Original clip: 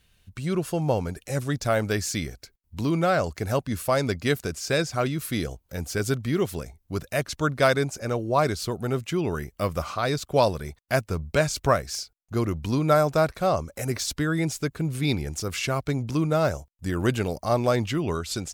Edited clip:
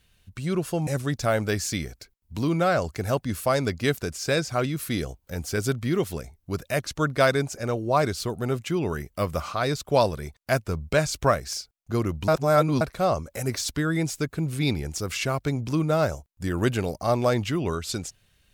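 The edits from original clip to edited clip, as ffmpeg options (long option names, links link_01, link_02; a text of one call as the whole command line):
ffmpeg -i in.wav -filter_complex "[0:a]asplit=4[link_01][link_02][link_03][link_04];[link_01]atrim=end=0.872[link_05];[link_02]atrim=start=1.288:end=12.702[link_06];[link_03]atrim=start=12.698:end=13.232,asetpts=PTS-STARTPTS,areverse[link_07];[link_04]atrim=start=13.228[link_08];[link_05][link_06]acrossfade=duration=0.004:curve1=hsin:curve2=hsin[link_09];[link_09][link_07]acrossfade=duration=0.004:curve1=hsin:curve2=hsin[link_10];[link_10][link_08]acrossfade=duration=0.004:curve1=hsin:curve2=hsin" out.wav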